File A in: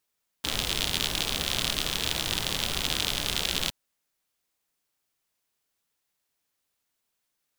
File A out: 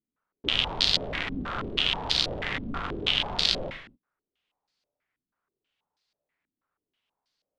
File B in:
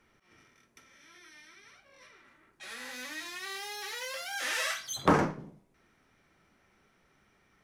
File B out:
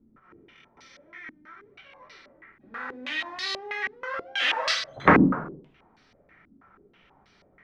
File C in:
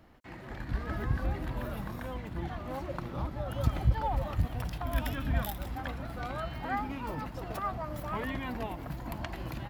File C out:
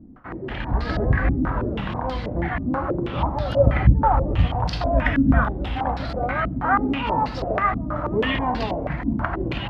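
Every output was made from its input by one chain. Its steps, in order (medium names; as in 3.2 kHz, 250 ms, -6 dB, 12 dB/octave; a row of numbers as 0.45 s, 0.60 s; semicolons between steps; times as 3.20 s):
gated-style reverb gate 280 ms falling, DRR 6.5 dB; step-sequenced low-pass 6.2 Hz 260–4500 Hz; peak normalisation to -3 dBFS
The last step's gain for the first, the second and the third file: -2.0 dB, +4.5 dB, +9.5 dB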